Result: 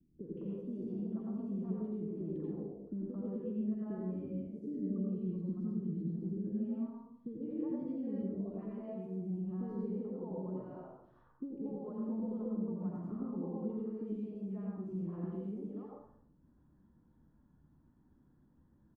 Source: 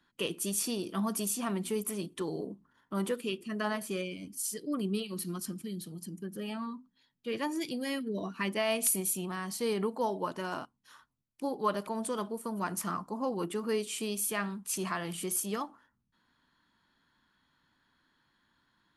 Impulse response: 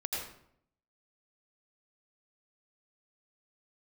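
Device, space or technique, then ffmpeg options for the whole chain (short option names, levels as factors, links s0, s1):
television next door: -filter_complex "[0:a]acompressor=threshold=0.00562:ratio=5,lowpass=330[s0];[1:a]atrim=start_sample=2205[s1];[s0][s1]afir=irnorm=-1:irlink=0,acrossover=split=440|2000[s2][s3][s4];[s4]adelay=180[s5];[s3]adelay=220[s6];[s2][s6][s5]amix=inputs=3:normalize=0,volume=3.16"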